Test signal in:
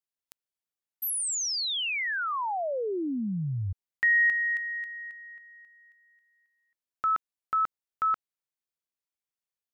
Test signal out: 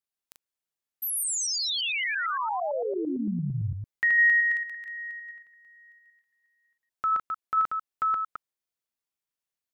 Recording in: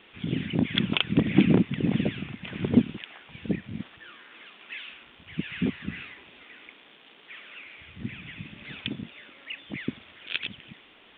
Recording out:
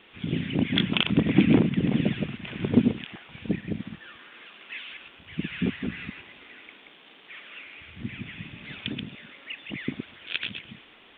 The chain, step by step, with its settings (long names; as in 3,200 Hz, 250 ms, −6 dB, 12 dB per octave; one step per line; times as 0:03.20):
delay that plays each chunk backwards 113 ms, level −4.5 dB